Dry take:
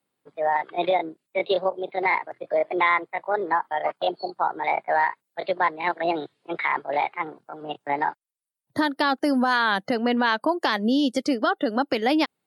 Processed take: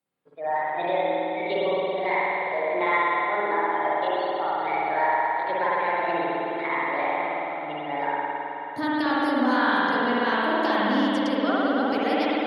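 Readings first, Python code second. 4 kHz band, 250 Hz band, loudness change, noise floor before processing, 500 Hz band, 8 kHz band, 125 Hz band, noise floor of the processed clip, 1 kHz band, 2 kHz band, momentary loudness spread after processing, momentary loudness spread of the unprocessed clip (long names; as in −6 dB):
−2.5 dB, −0.5 dB, 0.0 dB, −81 dBFS, +0.5 dB, can't be measured, +1.0 dB, −34 dBFS, +0.5 dB, 0.0 dB, 6 LU, 8 LU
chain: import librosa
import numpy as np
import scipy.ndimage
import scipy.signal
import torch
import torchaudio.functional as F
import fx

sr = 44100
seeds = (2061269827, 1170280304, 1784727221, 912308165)

y = fx.echo_stepped(x, sr, ms=166, hz=350.0, octaves=0.7, feedback_pct=70, wet_db=-9.0)
y = fx.rev_spring(y, sr, rt60_s=3.4, pass_ms=(53,), chirp_ms=75, drr_db=-8.0)
y = fx.cheby_harmonics(y, sr, harmonics=(4,), levels_db=(-43,), full_scale_db=-1.0)
y = y * librosa.db_to_amplitude(-8.5)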